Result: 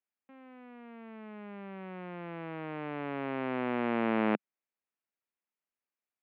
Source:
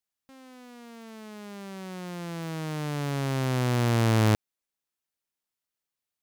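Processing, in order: elliptic band-pass 200–2500 Hz, stop band 40 dB; trim -2.5 dB

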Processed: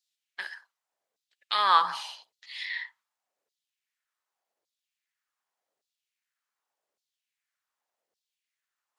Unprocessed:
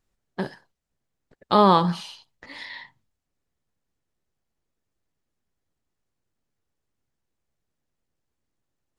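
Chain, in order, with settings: LFO high-pass saw down 0.86 Hz 480–4400 Hz; trim -1 dB

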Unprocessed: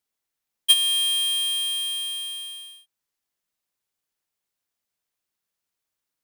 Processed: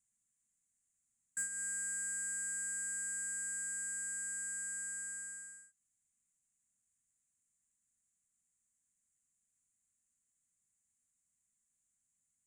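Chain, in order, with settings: speed mistake 15 ips tape played at 7.5 ips; dynamic bell 950 Hz, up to -7 dB, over -44 dBFS, Q 2.1; compression 4:1, threshold -35 dBFS, peak gain reduction 18.5 dB; saturation -25.5 dBFS, distortion -28 dB; FFT filter 250 Hz 0 dB, 380 Hz -26 dB, 930 Hz -18 dB, 2 kHz -8 dB, 4.6 kHz -29 dB, 7.1 kHz +11 dB, 11 kHz 0 dB; trim -1.5 dB

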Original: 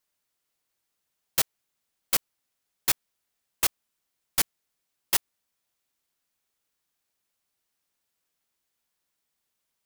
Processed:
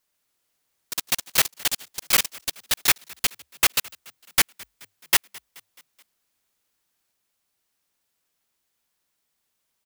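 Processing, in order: dynamic bell 2.1 kHz, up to +7 dB, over -45 dBFS, Q 0.84; frequency-shifting echo 214 ms, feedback 56%, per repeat +49 Hz, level -23.5 dB; ever faster or slower copies 144 ms, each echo +6 st, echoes 3; trim +4 dB

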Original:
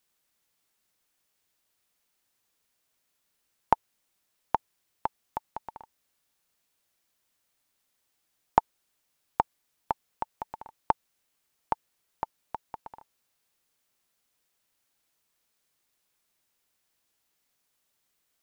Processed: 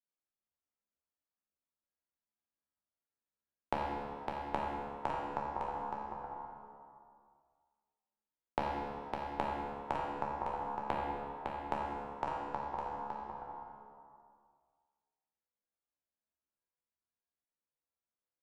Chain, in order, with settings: low-pass 1.3 kHz 12 dB/octave; expander -59 dBFS; compression, threshold -30 dBFS, peak gain reduction 14.5 dB; feedback comb 71 Hz, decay 0.74 s, harmonics all, mix 90%; delay 557 ms -6.5 dB; plate-style reverb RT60 1.7 s, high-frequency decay 0.65×, DRR -1.5 dB; three bands compressed up and down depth 40%; trim +11 dB

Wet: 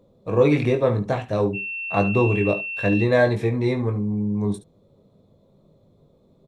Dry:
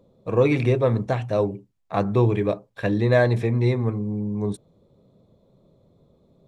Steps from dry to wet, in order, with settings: 1.53–3.03 s: whistle 2.7 kHz -30 dBFS; early reflections 20 ms -6 dB, 72 ms -13.5 dB

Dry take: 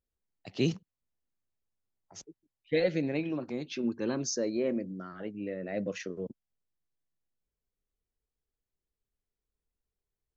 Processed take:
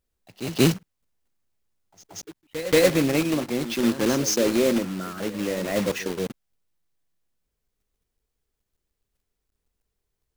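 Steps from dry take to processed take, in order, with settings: block-companded coder 3-bit; pre-echo 181 ms -13.5 dB; trim +9 dB

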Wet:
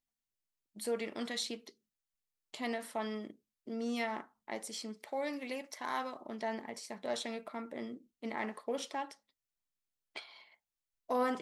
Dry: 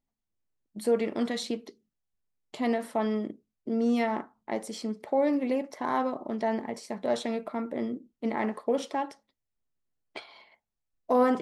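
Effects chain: tilt shelf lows -6 dB, about 1.2 kHz, from 4.97 s lows -10 dB, from 6.20 s lows -5.5 dB; trim -6 dB

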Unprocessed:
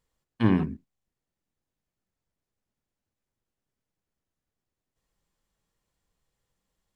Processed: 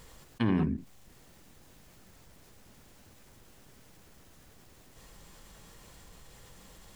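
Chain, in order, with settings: peak limiter -16 dBFS, peak gain reduction 8 dB; level flattener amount 50%; trim -1 dB

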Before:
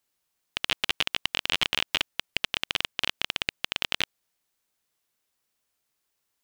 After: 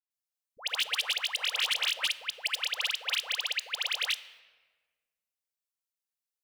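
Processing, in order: elliptic high-pass 480 Hz, stop band 40 dB; gate -60 dBFS, range -16 dB; treble shelf 2.8 kHz +9.5 dB; phase dispersion highs, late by 108 ms, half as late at 1.1 kHz; hard clipper -16.5 dBFS, distortion -19 dB; on a send: reverberation RT60 1.5 s, pre-delay 4 ms, DRR 13 dB; on the sum: trim -5.5 dB

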